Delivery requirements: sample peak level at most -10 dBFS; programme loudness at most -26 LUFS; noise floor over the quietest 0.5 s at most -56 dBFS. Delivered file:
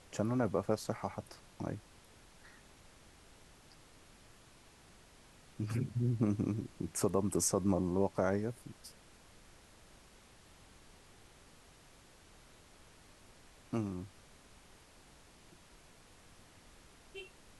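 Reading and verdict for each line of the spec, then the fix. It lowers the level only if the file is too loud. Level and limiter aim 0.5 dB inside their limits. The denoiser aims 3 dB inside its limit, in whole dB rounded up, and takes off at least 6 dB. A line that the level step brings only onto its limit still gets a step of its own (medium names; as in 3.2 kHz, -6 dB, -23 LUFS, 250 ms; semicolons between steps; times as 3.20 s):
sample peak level -17.0 dBFS: pass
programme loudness -35.5 LUFS: pass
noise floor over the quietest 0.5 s -61 dBFS: pass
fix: none needed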